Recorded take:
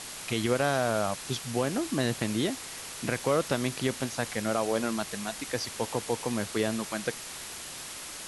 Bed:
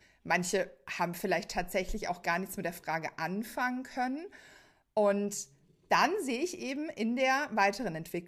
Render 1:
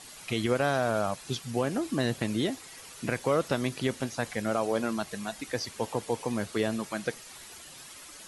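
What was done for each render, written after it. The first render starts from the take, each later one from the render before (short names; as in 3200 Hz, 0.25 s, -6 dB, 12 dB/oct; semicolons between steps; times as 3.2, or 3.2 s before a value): denoiser 10 dB, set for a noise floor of -41 dBFS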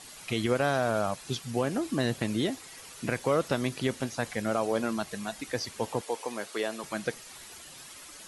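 6.01–6.84 HPF 410 Hz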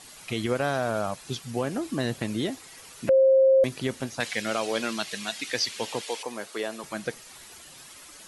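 3.09–3.64 bleep 532 Hz -14.5 dBFS; 4.2–6.23 weighting filter D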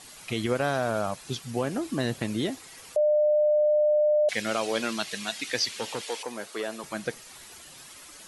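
2.96–4.29 bleep 601 Hz -18.5 dBFS; 5.63–6.68 core saturation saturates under 960 Hz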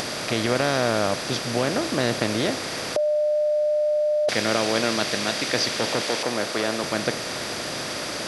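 per-bin compression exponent 0.4; upward compressor, threshold -28 dBFS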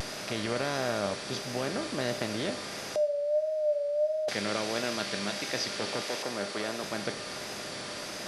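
vibrato 1.5 Hz 68 cents; resonator 200 Hz, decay 0.44 s, harmonics all, mix 70%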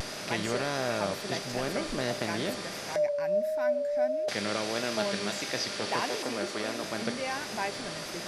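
add bed -6.5 dB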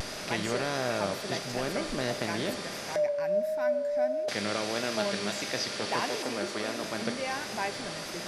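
spring tank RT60 2.2 s, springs 39 ms, chirp 65 ms, DRR 14.5 dB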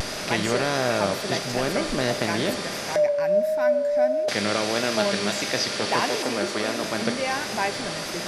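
gain +7 dB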